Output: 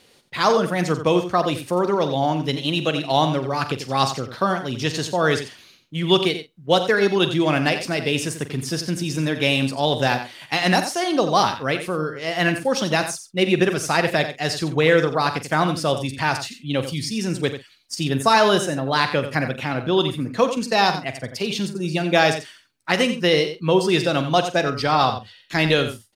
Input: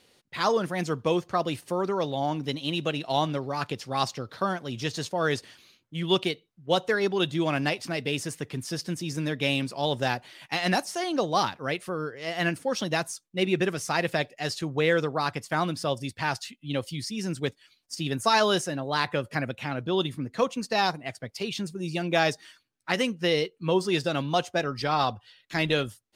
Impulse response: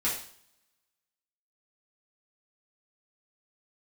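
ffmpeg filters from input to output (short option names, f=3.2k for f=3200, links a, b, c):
-filter_complex "[0:a]asettb=1/sr,asplit=3[a][b][c];[a]atrim=end=18.054[d];[b]atrim=start=18.05:end=18.88,asetpts=PTS-STARTPTS,afade=t=in:d=0.004:c=qsin,afade=t=out:st=0.826:d=0.004:c=qsin,equalizer=f=4.9k:t=o:w=2.1:g=-3.5[e];[c]atrim=start=18.876[f];[d][e]acrossfade=d=0.004:c1=hsin:c2=qsin[g];[g][f]acrossfade=d=0.004:c1=qsin:c2=hsin,asplit=2[h][i];[i]adelay=45,volume=-13dB[j];[h][j]amix=inputs=2:normalize=0,aecho=1:1:89:0.299,volume=6.5dB"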